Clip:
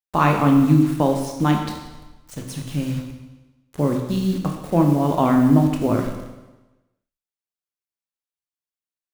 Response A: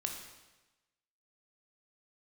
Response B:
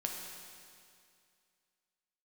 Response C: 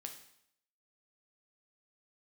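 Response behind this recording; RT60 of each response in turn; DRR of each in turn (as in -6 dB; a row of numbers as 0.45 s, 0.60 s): A; 1.1 s, 2.3 s, 0.70 s; 2.0 dB, 0.5 dB, 3.5 dB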